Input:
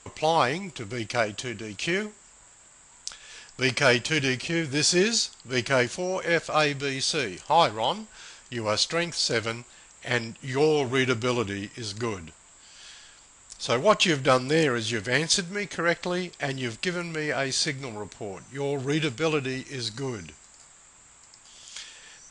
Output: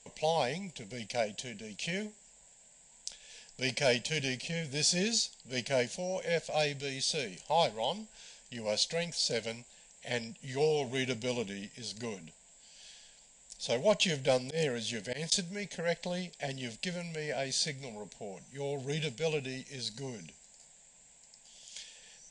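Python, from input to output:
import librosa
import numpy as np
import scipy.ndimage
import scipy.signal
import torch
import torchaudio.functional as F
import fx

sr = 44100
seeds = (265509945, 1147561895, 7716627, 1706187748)

y = fx.fixed_phaser(x, sr, hz=330.0, stages=6)
y = fx.auto_swell(y, sr, attack_ms=110.0, at=(14.42, 15.32))
y = y * librosa.db_to_amplitude(-5.0)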